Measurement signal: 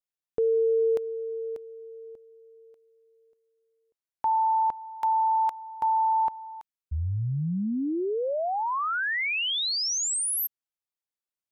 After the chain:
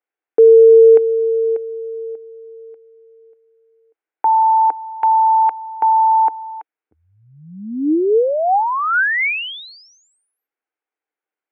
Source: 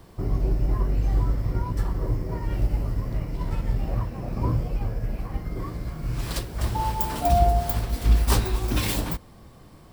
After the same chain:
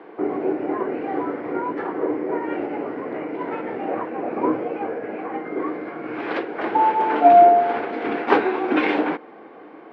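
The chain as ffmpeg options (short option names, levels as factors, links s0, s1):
-af "highpass=f=270:w=0.5412,highpass=f=270:w=1.3066,equalizer=f=310:t=q:w=4:g=8,equalizer=f=450:t=q:w=4:g=9,equalizer=f=780:t=q:w=4:g=8,equalizer=f=1500:t=q:w=4:g=7,equalizer=f=2200:t=q:w=4:g=5,lowpass=f=2600:w=0.5412,lowpass=f=2600:w=1.3066,volume=2"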